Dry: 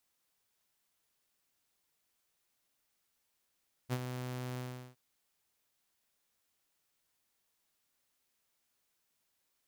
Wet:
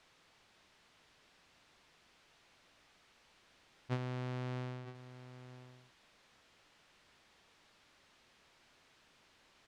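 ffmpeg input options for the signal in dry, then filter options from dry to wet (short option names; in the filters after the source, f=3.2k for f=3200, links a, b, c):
-f lavfi -i "aevalsrc='0.0422*(2*mod(126*t,1)-1)':d=1.065:s=44100,afade=t=in:d=0.038,afade=t=out:st=0.038:d=0.05:silence=0.398,afade=t=out:st=0.69:d=0.375"
-af "aeval=exprs='val(0)+0.5*0.00168*sgn(val(0))':c=same,lowpass=3.7k,aecho=1:1:955:0.211"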